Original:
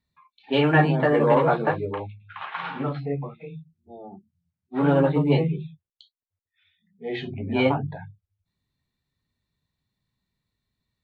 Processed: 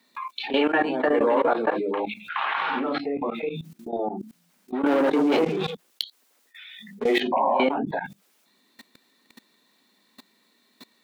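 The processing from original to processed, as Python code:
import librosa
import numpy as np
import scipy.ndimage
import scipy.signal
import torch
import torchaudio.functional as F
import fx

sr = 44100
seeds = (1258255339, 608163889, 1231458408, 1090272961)

y = fx.leveller(x, sr, passes=3, at=(4.86, 7.2))
y = scipy.signal.sosfilt(scipy.signal.butter(8, 220.0, 'highpass', fs=sr, output='sos'), y)
y = fx.level_steps(y, sr, step_db=21)
y = fx.spec_paint(y, sr, seeds[0], shape='noise', start_s=7.32, length_s=0.32, low_hz=520.0, high_hz=1100.0, level_db=-26.0)
y = fx.env_flatten(y, sr, amount_pct=70)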